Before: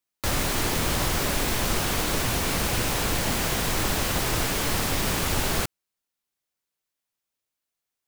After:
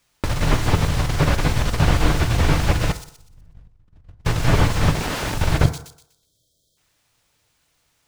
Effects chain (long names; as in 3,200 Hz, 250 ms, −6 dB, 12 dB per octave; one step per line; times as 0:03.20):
running median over 3 samples
0:02.93–0:04.25: RIAA equalisation playback
0:05.64–0:06.77: time-frequency box erased 680–3,100 Hz
low shelf with overshoot 180 Hz +7.5 dB, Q 1.5
compressor whose output falls as the input rises −27 dBFS, ratio −0.5
0:04.94–0:05.35: wrap-around overflow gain 24.5 dB
on a send: delay with a high-pass on its return 123 ms, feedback 32%, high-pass 4,500 Hz, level −10.5 dB
on the sum: feedback delay network reverb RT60 0.65 s, low-frequency decay 0.8×, high-frequency decay 0.3×, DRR 10 dB
slew-rate limiting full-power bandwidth 76 Hz
level +6.5 dB